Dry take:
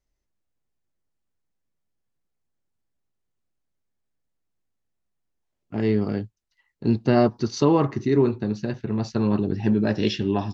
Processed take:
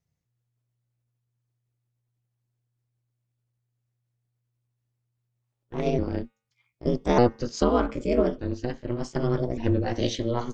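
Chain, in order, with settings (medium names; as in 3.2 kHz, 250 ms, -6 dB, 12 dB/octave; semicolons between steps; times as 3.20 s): sawtooth pitch modulation +4.5 st, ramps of 1197 ms; de-hum 338.1 Hz, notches 11; ring modulator 120 Hz; trim +1 dB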